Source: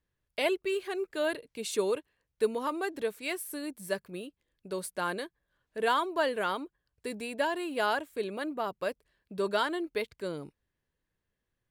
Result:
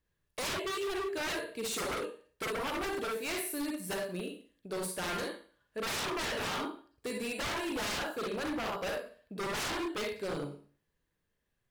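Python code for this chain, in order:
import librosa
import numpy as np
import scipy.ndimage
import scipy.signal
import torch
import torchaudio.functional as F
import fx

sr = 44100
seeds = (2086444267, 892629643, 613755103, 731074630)

y = fx.rev_schroeder(x, sr, rt60_s=0.43, comb_ms=38, drr_db=1.0)
y = 10.0 ** (-30.0 / 20.0) * (np.abs((y / 10.0 ** (-30.0 / 20.0) + 3.0) % 4.0 - 2.0) - 1.0)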